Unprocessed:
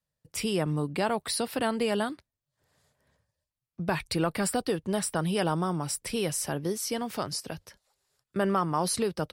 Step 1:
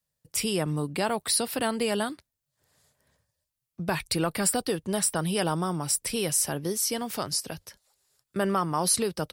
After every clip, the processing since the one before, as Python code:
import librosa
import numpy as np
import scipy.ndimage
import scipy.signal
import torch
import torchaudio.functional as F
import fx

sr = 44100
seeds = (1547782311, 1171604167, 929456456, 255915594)

y = fx.high_shelf(x, sr, hz=4900.0, db=9.0)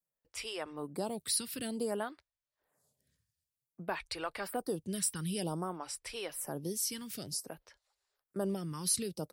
y = fx.stagger_phaser(x, sr, hz=0.54)
y = F.gain(torch.from_numpy(y), -6.5).numpy()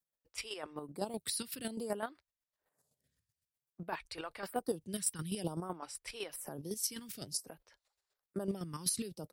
y = fx.chopper(x, sr, hz=7.9, depth_pct=60, duty_pct=25)
y = F.gain(torch.from_numpy(y), 1.5).numpy()